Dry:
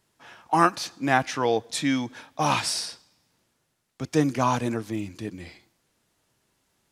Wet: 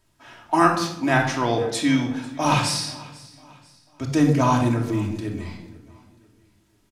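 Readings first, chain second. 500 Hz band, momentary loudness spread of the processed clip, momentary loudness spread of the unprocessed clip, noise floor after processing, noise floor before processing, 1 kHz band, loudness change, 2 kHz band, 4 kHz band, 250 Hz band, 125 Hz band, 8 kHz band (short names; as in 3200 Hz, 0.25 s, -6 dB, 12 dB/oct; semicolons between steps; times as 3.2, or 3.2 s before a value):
+2.5 dB, 15 LU, 14 LU, -63 dBFS, -74 dBFS, +2.0 dB, +4.0 dB, +3.0 dB, +2.5 dB, +5.5 dB, +8.0 dB, +2.0 dB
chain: low shelf 69 Hz +11.5 dB; on a send: feedback echo 0.493 s, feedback 40%, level -21 dB; on the sum: shoebox room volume 2000 m³, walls furnished, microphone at 2.8 m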